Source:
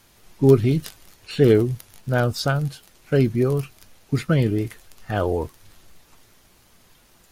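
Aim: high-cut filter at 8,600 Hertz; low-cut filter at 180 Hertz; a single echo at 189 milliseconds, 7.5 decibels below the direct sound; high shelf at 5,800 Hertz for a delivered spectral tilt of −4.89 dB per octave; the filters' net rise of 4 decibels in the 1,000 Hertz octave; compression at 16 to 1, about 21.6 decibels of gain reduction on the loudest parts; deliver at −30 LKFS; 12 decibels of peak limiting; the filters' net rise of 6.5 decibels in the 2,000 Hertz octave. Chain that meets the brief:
high-pass filter 180 Hz
low-pass filter 8,600 Hz
parametric band 1,000 Hz +3.5 dB
parametric band 2,000 Hz +7.5 dB
high-shelf EQ 5,800 Hz +3 dB
downward compressor 16 to 1, threshold −31 dBFS
brickwall limiter −28.5 dBFS
single-tap delay 189 ms −7.5 dB
level +10.5 dB

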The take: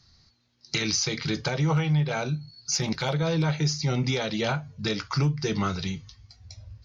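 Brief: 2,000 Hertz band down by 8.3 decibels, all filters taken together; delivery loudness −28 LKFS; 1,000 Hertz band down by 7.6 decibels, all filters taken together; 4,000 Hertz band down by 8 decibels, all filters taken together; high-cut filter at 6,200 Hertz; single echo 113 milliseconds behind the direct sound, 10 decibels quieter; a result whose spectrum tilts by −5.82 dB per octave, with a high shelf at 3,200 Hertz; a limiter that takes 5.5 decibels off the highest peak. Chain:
low-pass filter 6,200 Hz
parametric band 1,000 Hz −8.5 dB
parametric band 2,000 Hz −5.5 dB
high-shelf EQ 3,200 Hz −4 dB
parametric band 4,000 Hz −4 dB
brickwall limiter −22 dBFS
single-tap delay 113 ms −10 dB
level +3 dB

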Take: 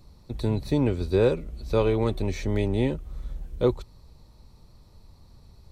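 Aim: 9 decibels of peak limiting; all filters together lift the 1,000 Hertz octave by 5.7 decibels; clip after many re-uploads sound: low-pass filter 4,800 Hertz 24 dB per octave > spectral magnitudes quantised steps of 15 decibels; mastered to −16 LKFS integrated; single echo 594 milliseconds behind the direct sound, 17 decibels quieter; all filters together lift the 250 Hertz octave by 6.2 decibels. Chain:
parametric band 250 Hz +7.5 dB
parametric band 1,000 Hz +6.5 dB
brickwall limiter −15 dBFS
low-pass filter 4,800 Hz 24 dB per octave
single-tap delay 594 ms −17 dB
spectral magnitudes quantised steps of 15 dB
level +11 dB

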